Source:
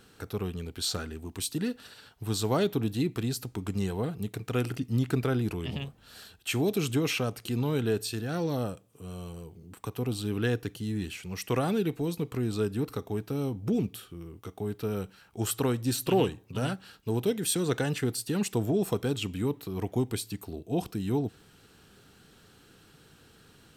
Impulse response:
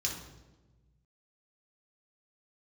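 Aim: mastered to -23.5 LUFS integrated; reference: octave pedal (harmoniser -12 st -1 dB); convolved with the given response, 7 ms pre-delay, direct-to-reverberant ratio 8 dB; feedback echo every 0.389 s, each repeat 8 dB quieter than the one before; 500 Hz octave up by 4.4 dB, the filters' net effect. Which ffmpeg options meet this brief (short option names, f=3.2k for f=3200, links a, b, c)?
-filter_complex "[0:a]equalizer=f=500:t=o:g=5.5,aecho=1:1:389|778|1167|1556|1945:0.398|0.159|0.0637|0.0255|0.0102,asplit=2[a][b];[1:a]atrim=start_sample=2205,adelay=7[c];[b][c]afir=irnorm=-1:irlink=0,volume=-11.5dB[d];[a][d]amix=inputs=2:normalize=0,asplit=2[e][f];[f]asetrate=22050,aresample=44100,atempo=2,volume=-1dB[g];[e][g]amix=inputs=2:normalize=0,volume=1.5dB"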